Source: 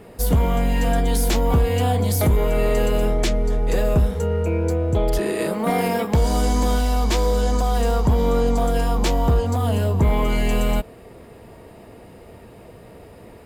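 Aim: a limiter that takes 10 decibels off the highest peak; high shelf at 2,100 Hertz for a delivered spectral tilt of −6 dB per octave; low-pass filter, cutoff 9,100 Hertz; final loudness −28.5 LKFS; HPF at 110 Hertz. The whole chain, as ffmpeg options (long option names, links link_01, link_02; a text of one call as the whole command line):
ffmpeg -i in.wav -af "highpass=110,lowpass=9100,highshelf=frequency=2100:gain=-5,volume=-1dB,alimiter=limit=-19.5dB:level=0:latency=1" out.wav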